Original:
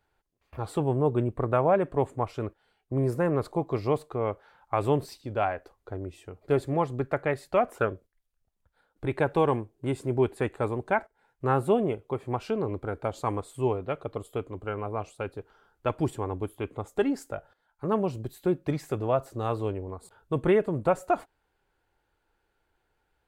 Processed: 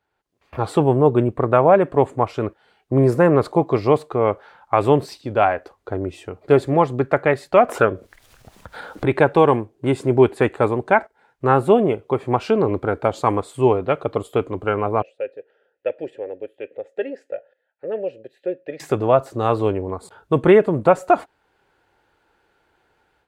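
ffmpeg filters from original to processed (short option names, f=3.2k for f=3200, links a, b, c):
-filter_complex "[0:a]asettb=1/sr,asplit=3[a][b][c];[a]atrim=end=7.694[d];[b]atrim=start=7.69:end=9.26,asetpts=PTS-STARTPTS,afade=t=in:d=0.004:c=qsin,afade=t=out:st=1.566:d=0.004:c=qsin,acompressor=mode=upward:threshold=-28dB:ratio=2.5:attack=3.2:release=140:knee=2.83:detection=peak[e];[c]atrim=start=9.256[f];[d][e]acrossfade=d=0.004:c1=hsin:c2=qsin[g];[g][f]acrossfade=d=0.004:c1=qsin:c2=hsin,asettb=1/sr,asplit=3[h][i][j];[h]atrim=end=15.024[k];[i]atrim=start=15.02:end=18.8,asetpts=PTS-STARTPTS,afade=t=in:d=0.004:c=qsin,afade=t=out:st=3.776:d=0.004:c=qsin,asplit=3[l][m][n];[l]bandpass=f=530:t=q:w=8,volume=0dB[o];[m]bandpass=f=1.84k:t=q:w=8,volume=-6dB[p];[n]bandpass=f=2.48k:t=q:w=8,volume=-9dB[q];[o][p][q]amix=inputs=3:normalize=0[r];[j]atrim=start=18.796[s];[k][r]acrossfade=d=0.004:c1=hsin:c2=qsin[t];[t][s]acrossfade=d=0.004:c1=qsin:c2=hsin,highpass=f=150:p=1,highshelf=f=8.7k:g=-11.5,dynaudnorm=f=200:g=3:m=13dB"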